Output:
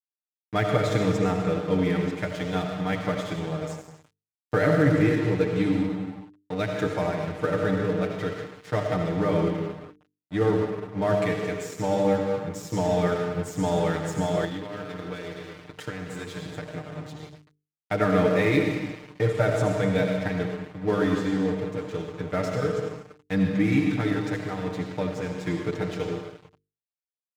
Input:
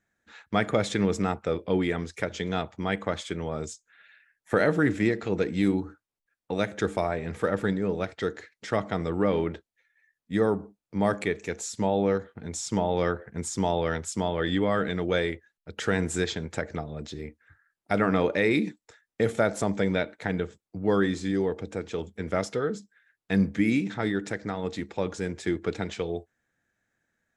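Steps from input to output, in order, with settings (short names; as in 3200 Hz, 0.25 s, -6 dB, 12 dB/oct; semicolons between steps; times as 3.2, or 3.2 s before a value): high shelf 7800 Hz -11.5 dB; reverb RT60 1.6 s, pre-delay 40 ms, DRR 1 dB; 14.44–16.92 compressor 6:1, threshold -29 dBFS, peak gain reduction 10 dB; crossover distortion -37 dBFS; HPF 60 Hz; bell 90 Hz +11 dB 1.5 oct; notches 50/100/150/200/250/300/350/400/450 Hz; comb 6.6 ms, depth 93%; gain -2.5 dB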